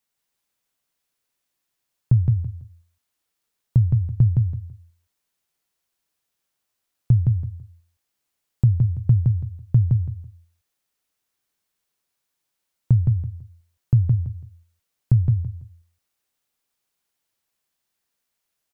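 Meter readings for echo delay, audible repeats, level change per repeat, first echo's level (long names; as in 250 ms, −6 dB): 166 ms, 3, −13.0 dB, −3.0 dB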